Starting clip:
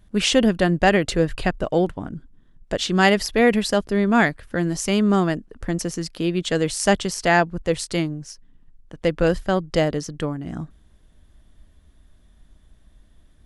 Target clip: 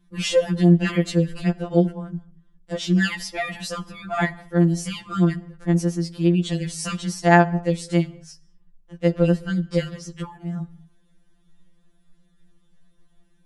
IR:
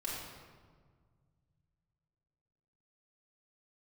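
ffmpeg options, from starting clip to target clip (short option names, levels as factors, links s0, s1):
-filter_complex "[0:a]equalizer=f=200:w=3.2:g=7.5,asplit=2[s0][s1];[1:a]atrim=start_sample=2205,afade=t=out:st=0.29:d=0.01,atrim=end_sample=13230[s2];[s1][s2]afir=irnorm=-1:irlink=0,volume=0.112[s3];[s0][s3]amix=inputs=2:normalize=0,afftfilt=real='re*2.83*eq(mod(b,8),0)':imag='im*2.83*eq(mod(b,8),0)':win_size=2048:overlap=0.75,volume=0.668"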